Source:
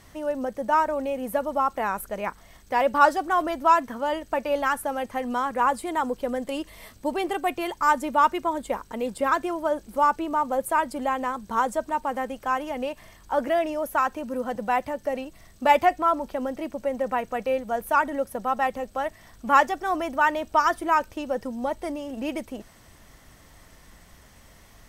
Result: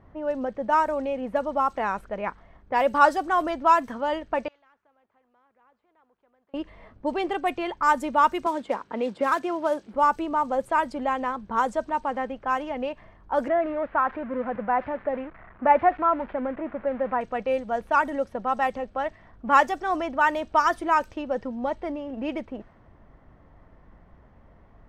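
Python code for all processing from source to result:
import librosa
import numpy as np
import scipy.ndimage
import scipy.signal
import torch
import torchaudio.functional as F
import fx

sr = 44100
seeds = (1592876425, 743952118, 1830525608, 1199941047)

y = fx.chain(x, sr, fx.bandpass_q(hz=6700.0, q=5.6),
    fx.air_absorb(metres=410.0),
    fx.spectral_comp(ratio=2.0), at=(4.48, 6.54))
y = fx.chain(y, sr, fx.block_float(bits=5),
    fx.highpass(hz=170.0, slope=12),
    fx.band_squash(depth_pct=40), at=(8.46, 9.94))
y = fx.chain(y, sr, fx.crossing_spikes(level_db=-17.0),
    fx.cheby2_lowpass(hz=7500.0, order=4, stop_db=70), at=(13.48, 17.21))
y = fx.high_shelf(y, sr, hz=10000.0, db=-9.0)
y = fx.env_lowpass(y, sr, base_hz=1000.0, full_db=-18.5)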